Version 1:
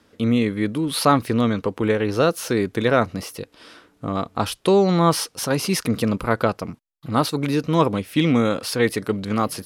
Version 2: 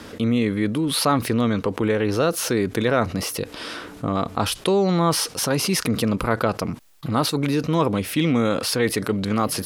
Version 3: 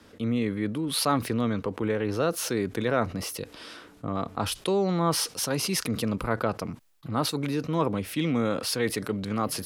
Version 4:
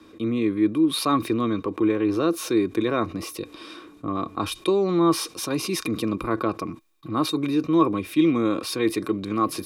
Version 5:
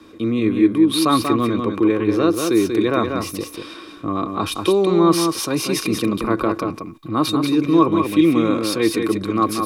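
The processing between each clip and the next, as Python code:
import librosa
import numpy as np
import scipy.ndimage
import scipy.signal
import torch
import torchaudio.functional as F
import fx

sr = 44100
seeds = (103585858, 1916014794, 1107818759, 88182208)

y1 = fx.env_flatten(x, sr, amount_pct=50)
y1 = y1 * librosa.db_to_amplitude(-4.0)
y2 = fx.band_widen(y1, sr, depth_pct=40)
y2 = y2 * librosa.db_to_amplitude(-6.0)
y3 = fx.small_body(y2, sr, hz=(330.0, 1100.0, 2400.0, 3700.0), ring_ms=55, db=16)
y3 = y3 * librosa.db_to_amplitude(-2.5)
y4 = y3 + 10.0 ** (-5.5 / 20.0) * np.pad(y3, (int(188 * sr / 1000.0), 0))[:len(y3)]
y4 = y4 * librosa.db_to_amplitude(4.5)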